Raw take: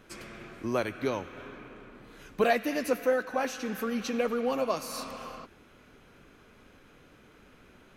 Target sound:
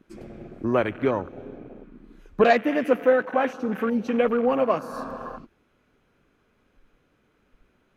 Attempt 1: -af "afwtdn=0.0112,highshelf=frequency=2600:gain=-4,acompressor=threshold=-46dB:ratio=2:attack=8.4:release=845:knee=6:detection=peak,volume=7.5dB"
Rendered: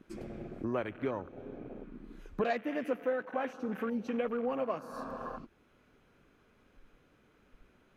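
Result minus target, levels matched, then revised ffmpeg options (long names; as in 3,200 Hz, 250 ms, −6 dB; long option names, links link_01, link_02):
downward compressor: peak gain reduction +15 dB
-af "afwtdn=0.0112,highshelf=frequency=2600:gain=-4,volume=7.5dB"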